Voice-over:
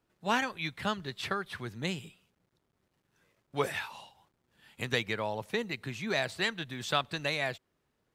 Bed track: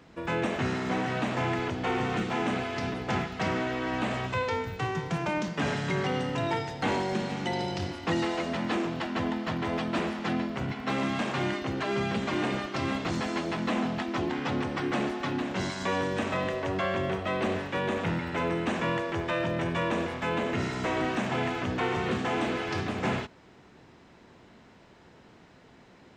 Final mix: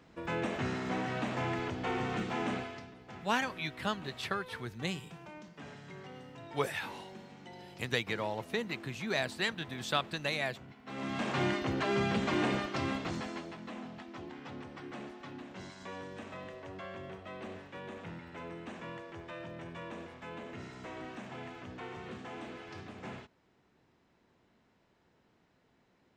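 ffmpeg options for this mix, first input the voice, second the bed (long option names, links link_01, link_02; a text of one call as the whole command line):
ffmpeg -i stem1.wav -i stem2.wav -filter_complex "[0:a]adelay=3000,volume=-2dB[link_01];[1:a]volume=12.5dB,afade=type=out:start_time=2.53:duration=0.33:silence=0.199526,afade=type=in:start_time=10.85:duration=0.57:silence=0.125893,afade=type=out:start_time=12.52:duration=1.05:silence=0.199526[link_02];[link_01][link_02]amix=inputs=2:normalize=0" out.wav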